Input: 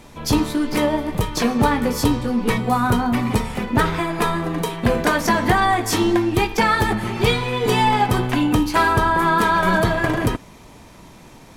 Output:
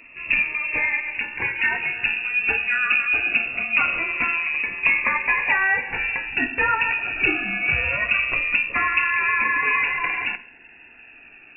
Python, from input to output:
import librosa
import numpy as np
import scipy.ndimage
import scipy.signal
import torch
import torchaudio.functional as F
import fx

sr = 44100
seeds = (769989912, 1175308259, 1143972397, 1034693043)

y = fx.rev_gated(x, sr, seeds[0], gate_ms=190, shape='falling', drr_db=10.5)
y = fx.freq_invert(y, sr, carrier_hz=2700)
y = fx.notch_cascade(y, sr, direction='falling', hz=0.23)
y = y * 10.0 ** (-1.5 / 20.0)